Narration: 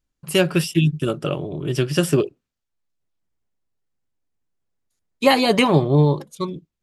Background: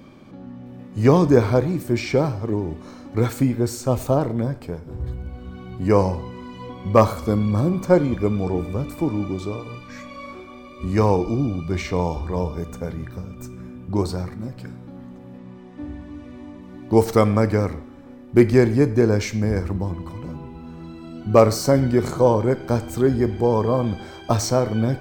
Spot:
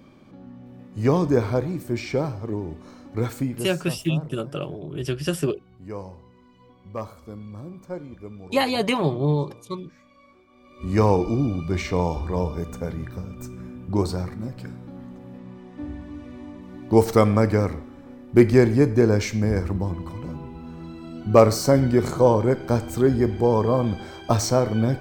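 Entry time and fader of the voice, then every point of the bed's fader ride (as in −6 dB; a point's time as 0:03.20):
3.30 s, −6.0 dB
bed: 0:03.35 −5 dB
0:04.06 −18 dB
0:10.47 −18 dB
0:10.94 −0.5 dB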